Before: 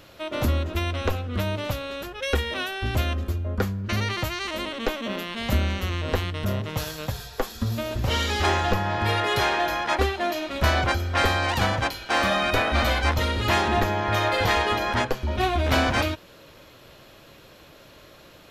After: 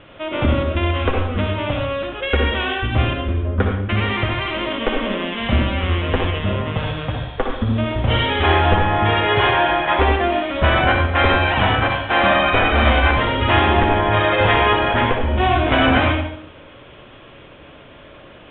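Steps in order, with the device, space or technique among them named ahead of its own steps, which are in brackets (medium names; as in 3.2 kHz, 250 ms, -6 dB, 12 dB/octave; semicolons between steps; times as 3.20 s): bathroom (reverberation RT60 0.65 s, pre-delay 56 ms, DRR 1 dB); steep low-pass 3.5 kHz 96 dB/octave; trim +5 dB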